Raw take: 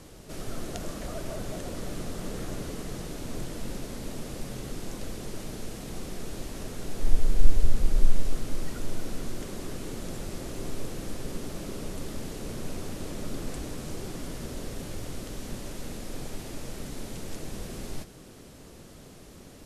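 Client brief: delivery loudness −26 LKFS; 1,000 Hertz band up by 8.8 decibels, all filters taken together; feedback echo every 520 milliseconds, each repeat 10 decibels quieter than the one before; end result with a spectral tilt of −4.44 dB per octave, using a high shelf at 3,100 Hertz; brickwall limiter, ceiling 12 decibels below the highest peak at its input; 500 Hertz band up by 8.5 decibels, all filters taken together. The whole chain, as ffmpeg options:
ffmpeg -i in.wav -af "equalizer=frequency=500:width_type=o:gain=8.5,equalizer=frequency=1000:width_type=o:gain=8,highshelf=frequency=3100:gain=5,alimiter=limit=-15.5dB:level=0:latency=1,aecho=1:1:520|1040|1560|2080:0.316|0.101|0.0324|0.0104,volume=7.5dB" out.wav

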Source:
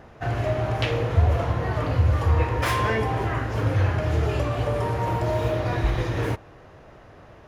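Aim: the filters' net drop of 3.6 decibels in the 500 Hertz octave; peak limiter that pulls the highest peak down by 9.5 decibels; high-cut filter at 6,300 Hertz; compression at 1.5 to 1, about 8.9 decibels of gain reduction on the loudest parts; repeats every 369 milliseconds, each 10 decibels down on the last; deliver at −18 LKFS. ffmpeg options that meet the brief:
ffmpeg -i in.wav -af "lowpass=6300,equalizer=frequency=500:width_type=o:gain=-4.5,acompressor=threshold=-40dB:ratio=1.5,alimiter=level_in=2.5dB:limit=-24dB:level=0:latency=1,volume=-2.5dB,aecho=1:1:369|738|1107|1476:0.316|0.101|0.0324|0.0104,volume=17dB" out.wav

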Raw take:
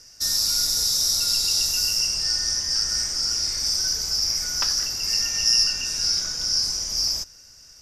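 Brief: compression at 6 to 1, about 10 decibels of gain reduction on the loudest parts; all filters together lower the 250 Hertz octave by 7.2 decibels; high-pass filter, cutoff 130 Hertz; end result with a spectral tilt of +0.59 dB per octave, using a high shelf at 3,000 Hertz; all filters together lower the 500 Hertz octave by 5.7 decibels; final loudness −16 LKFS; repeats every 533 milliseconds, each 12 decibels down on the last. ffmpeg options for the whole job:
ffmpeg -i in.wav -af "highpass=130,equalizer=frequency=250:width_type=o:gain=-8,equalizer=frequency=500:width_type=o:gain=-5,highshelf=frequency=3000:gain=-4.5,acompressor=threshold=-29dB:ratio=6,aecho=1:1:533|1066|1599:0.251|0.0628|0.0157,volume=13.5dB" out.wav

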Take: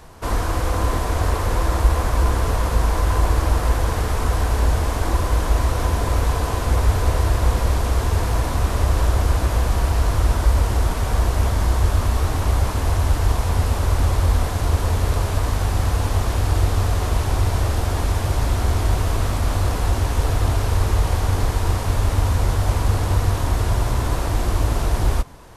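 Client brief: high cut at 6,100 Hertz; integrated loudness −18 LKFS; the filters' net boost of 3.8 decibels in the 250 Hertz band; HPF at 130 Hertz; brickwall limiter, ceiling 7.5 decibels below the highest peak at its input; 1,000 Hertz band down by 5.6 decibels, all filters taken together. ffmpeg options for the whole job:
ffmpeg -i in.wav -af "highpass=130,lowpass=6100,equalizer=frequency=250:width_type=o:gain=6,equalizer=frequency=1000:width_type=o:gain=-7.5,volume=11dB,alimiter=limit=-8.5dB:level=0:latency=1" out.wav

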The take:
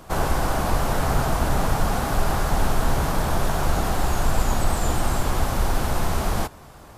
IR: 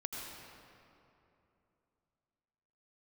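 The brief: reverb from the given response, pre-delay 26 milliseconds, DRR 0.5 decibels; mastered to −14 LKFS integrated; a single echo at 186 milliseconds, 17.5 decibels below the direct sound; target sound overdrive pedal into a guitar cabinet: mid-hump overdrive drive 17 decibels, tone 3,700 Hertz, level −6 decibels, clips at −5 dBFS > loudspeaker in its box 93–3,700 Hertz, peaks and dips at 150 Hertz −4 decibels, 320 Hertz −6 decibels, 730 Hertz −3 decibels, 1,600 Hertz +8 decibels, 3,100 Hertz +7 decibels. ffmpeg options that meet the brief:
-filter_complex "[0:a]aecho=1:1:186:0.133,asplit=2[link_01][link_02];[1:a]atrim=start_sample=2205,adelay=26[link_03];[link_02][link_03]afir=irnorm=-1:irlink=0,volume=-1.5dB[link_04];[link_01][link_04]amix=inputs=2:normalize=0,asplit=2[link_05][link_06];[link_06]highpass=frequency=720:poles=1,volume=17dB,asoftclip=type=tanh:threshold=-5dB[link_07];[link_05][link_07]amix=inputs=2:normalize=0,lowpass=frequency=3700:poles=1,volume=-6dB,highpass=93,equalizer=frequency=150:width_type=q:width=4:gain=-4,equalizer=frequency=320:width_type=q:width=4:gain=-6,equalizer=frequency=730:width_type=q:width=4:gain=-3,equalizer=frequency=1600:width_type=q:width=4:gain=8,equalizer=frequency=3100:width_type=q:width=4:gain=7,lowpass=frequency=3700:width=0.5412,lowpass=frequency=3700:width=1.3066,volume=2dB"

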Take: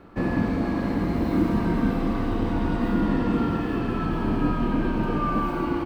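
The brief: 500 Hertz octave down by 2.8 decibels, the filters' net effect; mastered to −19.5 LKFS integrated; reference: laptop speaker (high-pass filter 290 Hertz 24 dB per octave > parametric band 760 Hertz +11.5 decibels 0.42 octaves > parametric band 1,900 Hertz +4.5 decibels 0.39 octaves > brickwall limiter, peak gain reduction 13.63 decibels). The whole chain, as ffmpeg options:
ffmpeg -i in.wav -af "highpass=frequency=290:width=0.5412,highpass=frequency=290:width=1.3066,equalizer=frequency=500:width_type=o:gain=-7.5,equalizer=frequency=760:width_type=o:width=0.42:gain=11.5,equalizer=frequency=1900:width_type=o:width=0.39:gain=4.5,volume=18.5dB,alimiter=limit=-11.5dB:level=0:latency=1" out.wav

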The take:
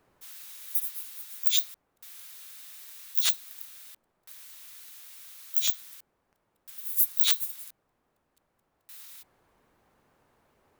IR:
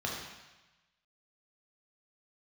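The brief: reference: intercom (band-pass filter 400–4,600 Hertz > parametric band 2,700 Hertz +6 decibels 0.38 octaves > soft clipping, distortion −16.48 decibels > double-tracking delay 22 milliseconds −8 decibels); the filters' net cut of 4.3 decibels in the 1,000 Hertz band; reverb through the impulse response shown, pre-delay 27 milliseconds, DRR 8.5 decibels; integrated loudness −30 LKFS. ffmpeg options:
-filter_complex "[0:a]equalizer=frequency=1000:width_type=o:gain=-6,asplit=2[link_01][link_02];[1:a]atrim=start_sample=2205,adelay=27[link_03];[link_02][link_03]afir=irnorm=-1:irlink=0,volume=-14dB[link_04];[link_01][link_04]amix=inputs=2:normalize=0,highpass=400,lowpass=4600,equalizer=frequency=2700:width_type=o:width=0.38:gain=6,asoftclip=threshold=-19.5dB,asplit=2[link_05][link_06];[link_06]adelay=22,volume=-8dB[link_07];[link_05][link_07]amix=inputs=2:normalize=0,volume=5dB"

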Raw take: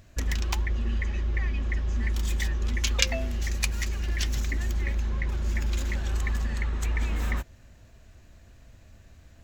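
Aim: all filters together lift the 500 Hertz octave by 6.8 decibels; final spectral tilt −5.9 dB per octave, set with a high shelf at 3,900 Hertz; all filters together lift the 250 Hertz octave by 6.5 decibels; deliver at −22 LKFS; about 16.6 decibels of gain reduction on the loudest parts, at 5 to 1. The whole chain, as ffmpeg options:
ffmpeg -i in.wav -af "equalizer=frequency=250:width_type=o:gain=6,equalizer=frequency=500:width_type=o:gain=7.5,highshelf=frequency=3900:gain=-9,acompressor=threshold=-39dB:ratio=5,volume=21dB" out.wav

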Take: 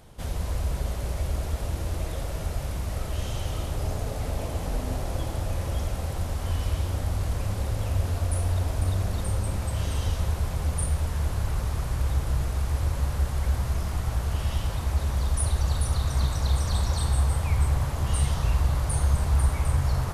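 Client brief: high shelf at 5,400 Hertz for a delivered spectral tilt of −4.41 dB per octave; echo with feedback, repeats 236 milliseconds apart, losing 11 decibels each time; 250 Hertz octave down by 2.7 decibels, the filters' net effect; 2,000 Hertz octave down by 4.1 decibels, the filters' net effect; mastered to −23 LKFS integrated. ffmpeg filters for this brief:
ffmpeg -i in.wav -af "equalizer=frequency=250:width_type=o:gain=-4.5,equalizer=frequency=2000:width_type=o:gain=-6.5,highshelf=frequency=5400:gain=8,aecho=1:1:236|472|708:0.282|0.0789|0.0221,volume=4.5dB" out.wav

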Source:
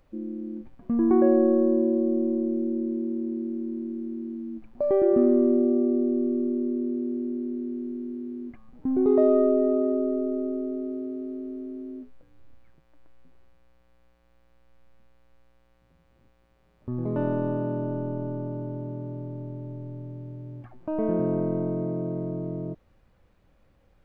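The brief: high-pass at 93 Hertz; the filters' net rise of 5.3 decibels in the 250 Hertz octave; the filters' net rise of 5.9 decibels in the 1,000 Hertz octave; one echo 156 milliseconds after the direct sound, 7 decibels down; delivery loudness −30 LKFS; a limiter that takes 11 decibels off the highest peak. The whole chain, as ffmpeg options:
ffmpeg -i in.wav -af "highpass=93,equalizer=frequency=250:width_type=o:gain=6,equalizer=frequency=1000:width_type=o:gain=7.5,alimiter=limit=-16.5dB:level=0:latency=1,aecho=1:1:156:0.447,volume=-4dB" out.wav

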